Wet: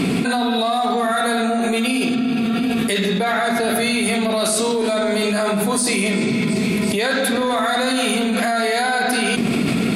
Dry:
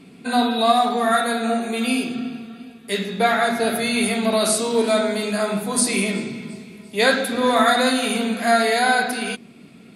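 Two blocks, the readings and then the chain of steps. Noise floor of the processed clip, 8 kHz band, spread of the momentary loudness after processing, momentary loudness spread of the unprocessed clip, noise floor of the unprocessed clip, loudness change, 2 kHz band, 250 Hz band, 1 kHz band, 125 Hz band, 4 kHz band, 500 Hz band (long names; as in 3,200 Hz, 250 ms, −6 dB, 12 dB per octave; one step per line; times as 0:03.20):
−20 dBFS, +1.5 dB, 1 LU, 13 LU, −45 dBFS, +1.0 dB, +1.5 dB, +4.5 dB, −0.5 dB, +8.0 dB, +2.0 dB, +1.0 dB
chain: brickwall limiter −14 dBFS, peak gain reduction 9 dB
in parallel at −12 dB: soft clipping −25 dBFS, distortion −10 dB
on the sum: envelope flattener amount 100%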